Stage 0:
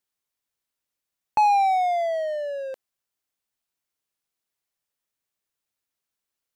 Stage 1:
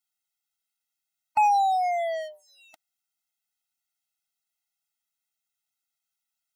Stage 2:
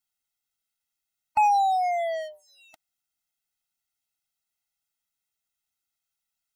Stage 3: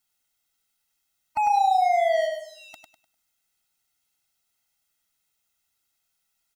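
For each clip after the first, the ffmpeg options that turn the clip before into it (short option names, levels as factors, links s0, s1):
-af "tiltshelf=f=690:g=-6.5,afftfilt=real='re*eq(mod(floor(b*sr/1024/310),2),0)':imag='im*eq(mod(floor(b*sr/1024/310),2),0)':win_size=1024:overlap=0.75,volume=0.708"
-af "lowshelf=f=110:g=9.5"
-filter_complex "[0:a]alimiter=level_in=1.19:limit=0.0631:level=0:latency=1,volume=0.841,asplit=2[s0][s1];[s1]aecho=0:1:100|200|300|400:0.562|0.174|0.054|0.0168[s2];[s0][s2]amix=inputs=2:normalize=0,volume=2.37"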